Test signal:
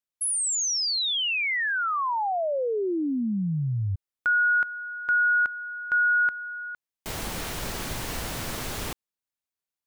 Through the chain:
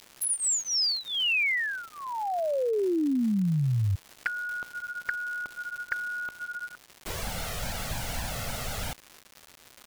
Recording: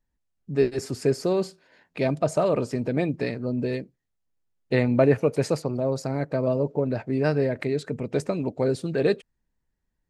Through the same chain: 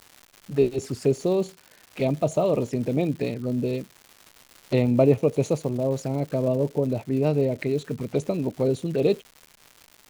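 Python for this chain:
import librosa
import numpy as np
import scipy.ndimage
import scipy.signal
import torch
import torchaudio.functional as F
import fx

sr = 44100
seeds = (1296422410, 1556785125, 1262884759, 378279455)

y = fx.env_flanger(x, sr, rest_ms=10.1, full_db=-23.5)
y = fx.dmg_crackle(y, sr, seeds[0], per_s=300.0, level_db=-37.0)
y = y * 10.0 ** (1.5 / 20.0)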